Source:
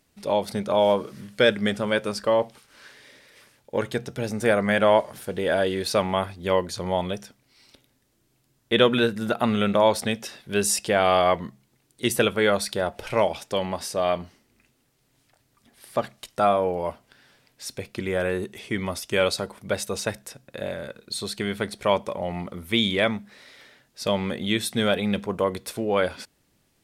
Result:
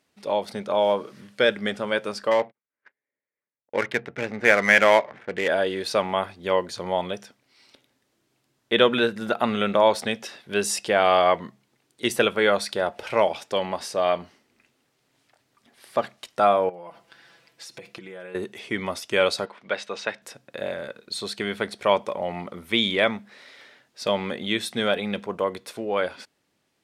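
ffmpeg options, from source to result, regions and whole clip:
ffmpeg -i in.wav -filter_complex "[0:a]asettb=1/sr,asplit=3[link_01][link_02][link_03];[link_01]atrim=end=2.314[link_04];[link_02]atrim=start=2.31:end=5.48,asetpts=PTS-STARTPTS,afade=type=in:duration=0.004:curve=qsin,afade=type=out:start_time=3.166:duration=0.004:curve=qsin,agate=range=-34dB:threshold=-46dB:ratio=16:release=100:detection=peak,equalizer=frequency=2100:width=1.7:gain=12.5,adynamicsmooth=sensitivity=4:basefreq=930[link_05];[link_03]atrim=start=5.476[link_06];[link_04][link_05]acrossfade=duration=0.004:curve1=hsin:curve2=qsin[link_07];[link_07][link_06]acrossfade=duration=0.004:curve1=qsin:curve2=hsin,asettb=1/sr,asplit=3[link_08][link_09][link_10];[link_08]atrim=end=16.694[link_11];[link_09]atrim=start=16.69:end=18.35,asetpts=PTS-STARTPTS,afade=type=in:duration=0.004:curve=qsin,afade=type=out:start_time=1.656:duration=0.004:curve=qsin,aecho=1:1:6:0.89,atrim=end_sample=73206,acompressor=threshold=-36dB:ratio=16:attack=3.2:release=140:knee=1:detection=peak[link_12];[link_10]atrim=start=18.346[link_13];[link_11][link_12]acrossfade=duration=0.004:curve1=hsin:curve2=qsin[link_14];[link_14][link_13]acrossfade=duration=0.004:curve1=qsin:curve2=hsin,asettb=1/sr,asplit=3[link_15][link_16][link_17];[link_15]atrim=end=19.454[link_18];[link_16]atrim=start=19.45:end=20.22,asetpts=PTS-STARTPTS,afade=type=in:duration=0.004:curve=qsin,afade=type=out:start_time=0.766:duration=0.004:curve=qsin,highpass=170,lowpass=3000,tiltshelf=frequency=1200:gain=-5.5[link_19];[link_17]atrim=start=20.216[link_20];[link_18][link_19]acrossfade=duration=0.004:curve1=hsin:curve2=qsin[link_21];[link_21][link_20]acrossfade=duration=0.004:curve1=qsin:curve2=hsin,highpass=frequency=340:poles=1,highshelf=frequency=8000:gain=-12,dynaudnorm=framelen=420:gausssize=11:maxgain=3dB" out.wav

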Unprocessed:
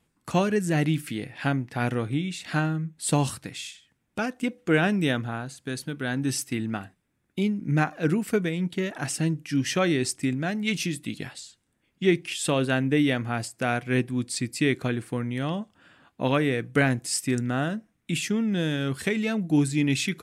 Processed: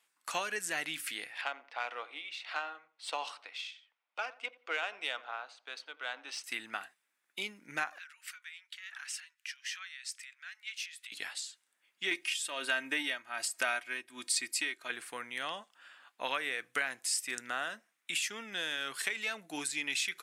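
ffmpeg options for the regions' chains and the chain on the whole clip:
ffmpeg -i in.wav -filter_complex "[0:a]asettb=1/sr,asplit=3[link_01][link_02][link_03];[link_01]atrim=end=1.414[link_04];[link_02]atrim=start=1.41:end=6.44,asetpts=PTS-STARTPTS,afade=type=in:duration=0.004:curve=qsin,afade=type=out:start_time=5.026:duration=0.004:curve=qsin,highpass=frequency=370:width=0.5412,highpass=frequency=370:width=1.3066,equalizer=frequency=370:width_type=q:width=4:gain=-8,equalizer=frequency=1700:width_type=q:width=4:gain=-9,equalizer=frequency=7200:width_type=q:width=4:gain=-8,lowpass=frequency=8700:width=0.5412,lowpass=frequency=8700:width=1.3066,adynamicsmooth=sensitivity=1.5:basefreq=3300,asplit=2[link_05][link_06];[link_06]adelay=87,lowpass=frequency=1400:poles=1,volume=-18dB,asplit=2[link_07][link_08];[link_08]adelay=87,lowpass=frequency=1400:poles=1,volume=0.35,asplit=2[link_09][link_10];[link_10]adelay=87,lowpass=frequency=1400:poles=1,volume=0.35[link_11];[link_05][link_07][link_09][link_11]amix=inputs=4:normalize=0,atrim=end_sample=221823[link_12];[link_03]atrim=start=6.436[link_13];[link_04][link_12]acrossfade=duration=0.004:curve1=hsin:curve2=qsin[link_14];[link_14][link_13]acrossfade=duration=0.004:curve1=qsin:curve2=hsin,asettb=1/sr,asplit=3[link_15][link_16][link_17];[link_15]atrim=end=7.984[link_18];[link_16]atrim=start=7.98:end=11.12,asetpts=PTS-STARTPTS,afade=type=in:duration=0.004:curve=qsin,afade=type=out:start_time=3.136:duration=0.004:curve=qsin,equalizer=frequency=11000:width_type=o:width=1.4:gain=-9,acompressor=threshold=-36dB:ratio=5:attack=3.2:release=140:knee=1:detection=peak,highpass=frequency=1400:width=0.5412,highpass=frequency=1400:width=1.3066[link_19];[link_17]atrim=start=11.116[link_20];[link_18][link_19]acrossfade=duration=0.004:curve1=hsin:curve2=qsin[link_21];[link_21][link_20]acrossfade=duration=0.004:curve1=qsin:curve2=hsin,asettb=1/sr,asplit=3[link_22][link_23][link_24];[link_22]atrim=end=12.114[link_25];[link_23]atrim=start=12.11:end=14.9,asetpts=PTS-STARTPTS,afade=type=in:duration=0.004:curve=qsin,afade=type=out:start_time=2.786:duration=0.004:curve=qsin,aecho=1:1:3.2:0.58,atrim=end_sample=123039,acontrast=50,tremolo=f=1.3:d=0.85[link_26];[link_24]atrim=start=14.896[link_27];[link_25][link_26]acrossfade=duration=0.004:curve1=hsin:curve2=qsin[link_28];[link_28][link_27]acrossfade=duration=0.004:curve1=qsin:curve2=hsin,highpass=1100,acompressor=threshold=-33dB:ratio=3,volume=1.5dB" out.wav

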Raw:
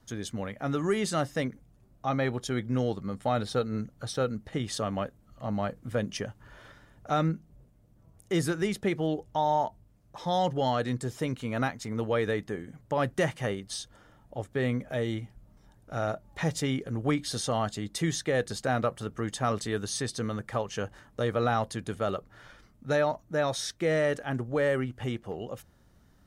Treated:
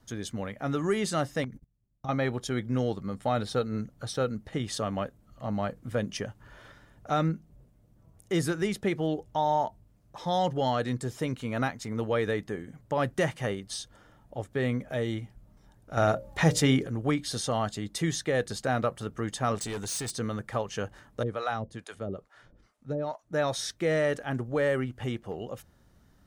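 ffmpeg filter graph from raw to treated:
ffmpeg -i in.wav -filter_complex "[0:a]asettb=1/sr,asplit=3[link_01][link_02][link_03];[link_01]atrim=end=1.444[link_04];[link_02]atrim=start=1.44:end=2.09,asetpts=PTS-STARTPTS,afade=type=in:duration=0.004:curve=qsin,afade=type=out:start_time=0.646:duration=0.004:curve=qsin,bass=frequency=250:gain=12,treble=frequency=4000:gain=3,agate=range=-27dB:threshold=-43dB:ratio=16:release=100:detection=peak,acompressor=threshold=-35dB:ratio=6:attack=3.2:release=140:knee=1:detection=peak[link_05];[link_03]atrim=start=2.086[link_06];[link_04][link_05]acrossfade=duration=0.004:curve1=hsin:curve2=qsin[link_07];[link_07][link_06]acrossfade=duration=0.004:curve1=qsin:curve2=hsin,asettb=1/sr,asplit=3[link_08][link_09][link_10];[link_08]atrim=end=15.974[link_11];[link_09]atrim=start=15.97:end=16.87,asetpts=PTS-STARTPTS,afade=type=in:duration=0.004:curve=qsin,afade=type=out:start_time=0.896:duration=0.004:curve=qsin,bandreject=frequency=60:width_type=h:width=6,bandreject=frequency=120:width_type=h:width=6,bandreject=frequency=180:width_type=h:width=6,bandreject=frequency=240:width_type=h:width=6,bandreject=frequency=300:width_type=h:width=6,bandreject=frequency=360:width_type=h:width=6,bandreject=frequency=420:width_type=h:width=6,bandreject=frequency=480:width_type=h:width=6,bandreject=frequency=540:width_type=h:width=6,bandreject=frequency=600:width_type=h:width=6,acontrast=75[link_12];[link_10]atrim=start=16.866[link_13];[link_11][link_12]acrossfade=duration=0.004:curve1=hsin:curve2=qsin[link_14];[link_14][link_13]acrossfade=duration=0.004:curve1=qsin:curve2=hsin,asettb=1/sr,asplit=3[link_15][link_16][link_17];[link_15]atrim=end=19.554[link_18];[link_16]atrim=start=19.55:end=20.16,asetpts=PTS-STARTPTS,afade=type=in:duration=0.004:curve=qsin,afade=type=out:start_time=0.606:duration=0.004:curve=qsin,equalizer=frequency=7900:width=1.4:gain=9.5,volume=31dB,asoftclip=hard,volume=-31dB[link_19];[link_17]atrim=start=20.156[link_20];[link_18][link_19]acrossfade=duration=0.004:curve1=hsin:curve2=qsin[link_21];[link_21][link_20]acrossfade=duration=0.004:curve1=qsin:curve2=hsin,asettb=1/sr,asplit=3[link_22][link_23][link_24];[link_22]atrim=end=21.234[link_25];[link_23]atrim=start=21.23:end=23.33,asetpts=PTS-STARTPTS,afade=type=in:duration=0.004:curve=qsin,afade=type=out:start_time=2.096:duration=0.004:curve=qsin,lowpass=frequency=11000:width=0.5412,lowpass=frequency=11000:width=1.3066,acrossover=split=520[link_26][link_27];[link_26]aeval=exprs='val(0)*(1-1/2+1/2*cos(2*PI*2.3*n/s))':channel_layout=same[link_28];[link_27]aeval=exprs='val(0)*(1-1/2-1/2*cos(2*PI*2.3*n/s))':channel_layout=same[link_29];[link_28][link_29]amix=inputs=2:normalize=0[link_30];[link_24]atrim=start=23.326[link_31];[link_25][link_30]acrossfade=duration=0.004:curve1=hsin:curve2=qsin[link_32];[link_32][link_31]acrossfade=duration=0.004:curve1=qsin:curve2=hsin" out.wav

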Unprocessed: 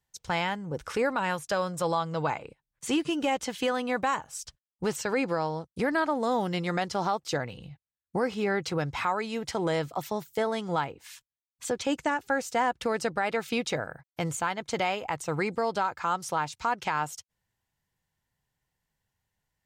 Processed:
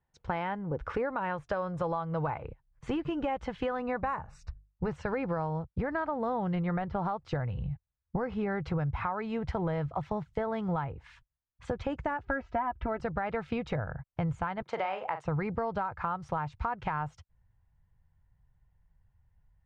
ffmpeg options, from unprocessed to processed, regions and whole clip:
ffmpeg -i in.wav -filter_complex "[0:a]asettb=1/sr,asplit=3[link_01][link_02][link_03];[link_01]atrim=end=3.784[link_04];[link_02]atrim=start=3.78:end=4.92,asetpts=PTS-STARTPTS,afade=type=in:duration=0.004:curve=qsin,afade=type=out:start_time=1.136:duration=0.004:curve=qsin,asuperstop=centerf=3200:order=8:qfactor=5.6,bandreject=frequency=50:width_type=h:width=6,bandreject=frequency=100:width_type=h:width=6,bandreject=frequency=150:width_type=h:width=6,bandreject=frequency=200:width_type=h:width=6[link_05];[link_03]atrim=start=4.916[link_06];[link_04][link_05]acrossfade=duration=0.004:curve1=hsin:curve2=qsin[link_07];[link_07][link_06]acrossfade=duration=0.004:curve1=qsin:curve2=hsin,asettb=1/sr,asplit=3[link_08][link_09][link_10];[link_08]atrim=end=6.554[link_11];[link_09]atrim=start=6.55:end=7.05,asetpts=PTS-STARTPTS,afade=type=in:duration=0.004:curve=qsin,afade=type=out:start_time=0.496:duration=0.004:curve=qsin,deesser=0.95,lowpass=4000[link_12];[link_10]atrim=start=7.046[link_13];[link_11][link_12]acrossfade=duration=0.004:curve1=hsin:curve2=qsin[link_14];[link_14][link_13]acrossfade=duration=0.004:curve1=qsin:curve2=hsin,asettb=1/sr,asplit=3[link_15][link_16][link_17];[link_15]atrim=end=12.254[link_18];[link_16]atrim=start=12.25:end=13,asetpts=PTS-STARTPTS,afade=type=in:duration=0.004:curve=qsin,afade=type=out:start_time=0.746:duration=0.004:curve=qsin,lowpass=2600,aecho=1:1:3.1:0.83,atrim=end_sample=33075[link_19];[link_17]atrim=start=12.996[link_20];[link_18][link_19]acrossfade=duration=0.004:curve1=hsin:curve2=qsin[link_21];[link_21][link_20]acrossfade=duration=0.004:curve1=qsin:curve2=hsin,asettb=1/sr,asplit=3[link_22][link_23][link_24];[link_22]atrim=end=14.624[link_25];[link_23]atrim=start=14.62:end=15.25,asetpts=PTS-STARTPTS,afade=type=in:duration=0.004:curve=qsin,afade=type=out:start_time=0.626:duration=0.004:curve=qsin,highpass=420,asplit=2[link_26][link_27];[link_27]adelay=42,volume=-9.5dB[link_28];[link_26][link_28]amix=inputs=2:normalize=0,atrim=end_sample=27783[link_29];[link_24]atrim=start=15.246[link_30];[link_25][link_29]acrossfade=duration=0.004:curve1=hsin:curve2=qsin[link_31];[link_31][link_30]acrossfade=duration=0.004:curve1=qsin:curve2=hsin,lowpass=1500,asubboost=boost=11:cutoff=87,acompressor=threshold=-32dB:ratio=6,volume=3.5dB" out.wav

